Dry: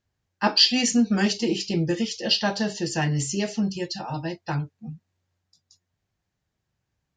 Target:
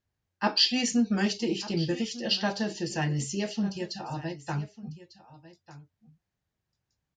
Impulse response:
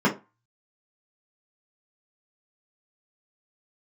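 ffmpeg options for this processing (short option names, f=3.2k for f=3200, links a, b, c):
-af "highshelf=f=7.9k:g=-5,aecho=1:1:1198:0.141,volume=-4.5dB"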